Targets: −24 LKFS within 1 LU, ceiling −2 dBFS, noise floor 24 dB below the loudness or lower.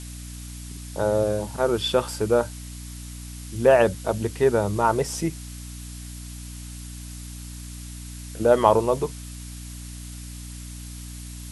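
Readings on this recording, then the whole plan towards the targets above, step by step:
mains hum 60 Hz; hum harmonics up to 300 Hz; level of the hum −35 dBFS; background noise floor −38 dBFS; target noise floor −47 dBFS; integrated loudness −22.5 LKFS; sample peak −3.0 dBFS; target loudness −24.0 LKFS
→ hum removal 60 Hz, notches 5
broadband denoise 9 dB, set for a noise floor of −38 dBFS
level −1.5 dB

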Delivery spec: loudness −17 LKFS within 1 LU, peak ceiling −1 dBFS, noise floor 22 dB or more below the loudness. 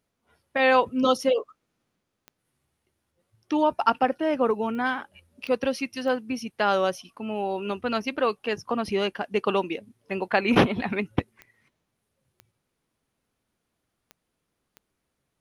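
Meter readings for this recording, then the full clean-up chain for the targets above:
number of clicks 8; integrated loudness −25.5 LKFS; sample peak −4.5 dBFS; target loudness −17.0 LKFS
→ click removal
level +8.5 dB
brickwall limiter −1 dBFS

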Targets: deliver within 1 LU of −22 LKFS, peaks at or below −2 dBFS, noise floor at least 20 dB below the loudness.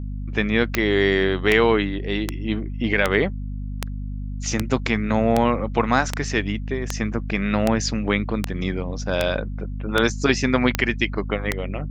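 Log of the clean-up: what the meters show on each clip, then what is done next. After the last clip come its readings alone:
number of clicks 15; mains hum 50 Hz; hum harmonics up to 250 Hz; level of the hum −26 dBFS; integrated loudness −22.5 LKFS; sample peak −3.0 dBFS; target loudness −22.0 LKFS
→ click removal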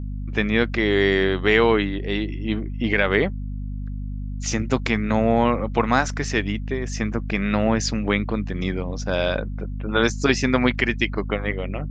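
number of clicks 0; mains hum 50 Hz; hum harmonics up to 250 Hz; level of the hum −26 dBFS
→ hum removal 50 Hz, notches 5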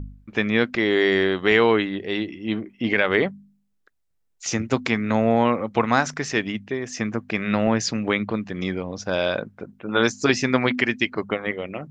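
mains hum none found; integrated loudness −23.0 LKFS; sample peak −3.5 dBFS; target loudness −22.0 LKFS
→ level +1 dB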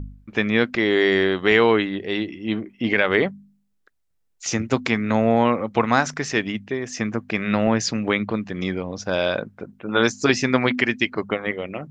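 integrated loudness −22.0 LKFS; sample peak −2.5 dBFS; background noise floor −68 dBFS

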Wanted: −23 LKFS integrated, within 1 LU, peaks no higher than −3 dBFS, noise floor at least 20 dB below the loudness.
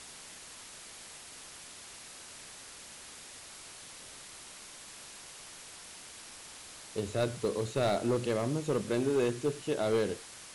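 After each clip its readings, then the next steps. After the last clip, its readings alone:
share of clipped samples 0.7%; peaks flattened at −23.0 dBFS; background noise floor −50 dBFS; target noise floor −52 dBFS; integrated loudness −32.0 LKFS; sample peak −23.0 dBFS; target loudness −23.0 LKFS
→ clipped peaks rebuilt −23 dBFS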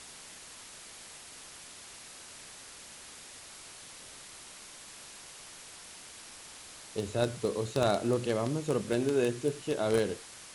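share of clipped samples 0.0%; background noise floor −50 dBFS; target noise floor −51 dBFS
→ broadband denoise 6 dB, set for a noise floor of −50 dBFS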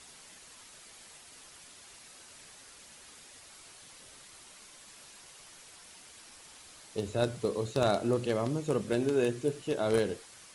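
background noise floor −54 dBFS; integrated loudness −31.0 LKFS; sample peak −14.0 dBFS; target loudness −23.0 LKFS
→ level +8 dB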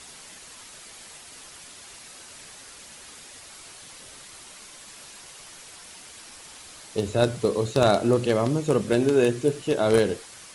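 integrated loudness −23.0 LKFS; sample peak −6.0 dBFS; background noise floor −46 dBFS

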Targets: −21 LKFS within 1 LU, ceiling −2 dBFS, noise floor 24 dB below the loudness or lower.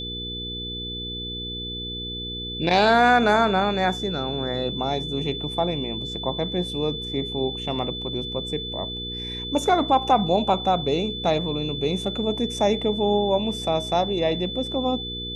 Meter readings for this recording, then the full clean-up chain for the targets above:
mains hum 60 Hz; hum harmonics up to 480 Hz; level of the hum −33 dBFS; interfering tone 3,500 Hz; level of the tone −31 dBFS; integrated loudness −24.0 LKFS; sample peak −6.0 dBFS; target loudness −21.0 LKFS
→ hum removal 60 Hz, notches 8
notch filter 3,500 Hz, Q 30
level +3 dB

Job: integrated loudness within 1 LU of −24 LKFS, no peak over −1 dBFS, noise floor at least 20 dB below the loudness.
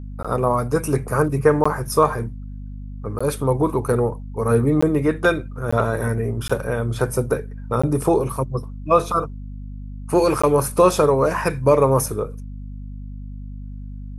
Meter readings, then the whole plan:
number of dropouts 8; longest dropout 15 ms; mains hum 50 Hz; hum harmonics up to 250 Hz; level of the hum −30 dBFS; integrated loudness −20.5 LKFS; sample peak −3.0 dBFS; target loudness −24.0 LKFS
→ repair the gap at 0:00.23/0:01.64/0:03.19/0:04.81/0:05.71/0:06.48/0:07.82/0:10.42, 15 ms
mains-hum notches 50/100/150/200/250 Hz
level −3.5 dB

